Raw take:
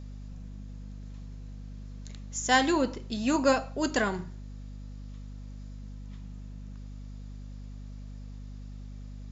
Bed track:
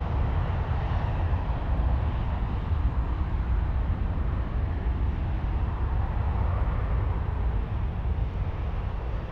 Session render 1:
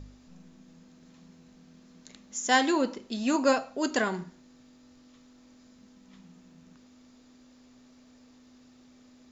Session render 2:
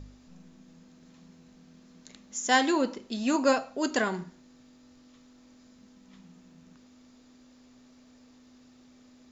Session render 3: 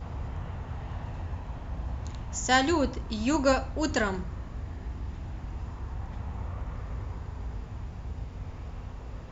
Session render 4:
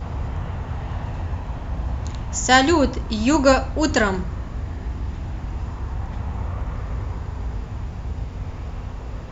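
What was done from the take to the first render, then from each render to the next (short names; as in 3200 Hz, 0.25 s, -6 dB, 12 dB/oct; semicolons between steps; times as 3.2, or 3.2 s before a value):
de-hum 50 Hz, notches 4
nothing audible
add bed track -9.5 dB
gain +8.5 dB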